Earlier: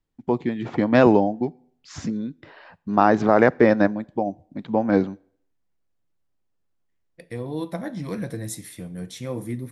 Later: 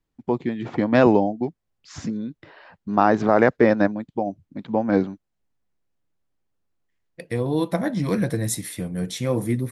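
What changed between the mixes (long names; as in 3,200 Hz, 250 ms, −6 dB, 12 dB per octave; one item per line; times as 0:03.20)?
second voice +9.0 dB
reverb: off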